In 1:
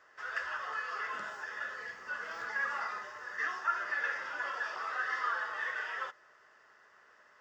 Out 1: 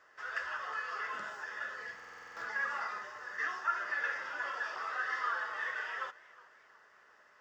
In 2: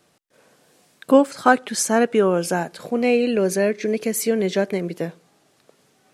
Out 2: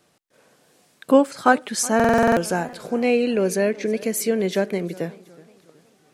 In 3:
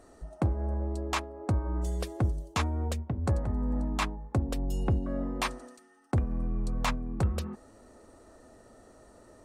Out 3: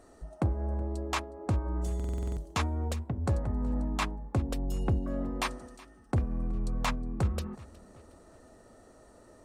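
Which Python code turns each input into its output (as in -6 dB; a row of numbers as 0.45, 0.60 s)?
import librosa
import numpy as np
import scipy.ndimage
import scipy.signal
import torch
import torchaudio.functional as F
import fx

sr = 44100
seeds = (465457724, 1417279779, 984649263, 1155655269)

y = fx.buffer_glitch(x, sr, at_s=(1.95,), block=2048, repeats=8)
y = fx.echo_warbled(y, sr, ms=368, feedback_pct=42, rate_hz=2.8, cents=127, wet_db=-21.5)
y = y * 10.0 ** (-1.0 / 20.0)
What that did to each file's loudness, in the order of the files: -1.0, -0.5, -1.0 LU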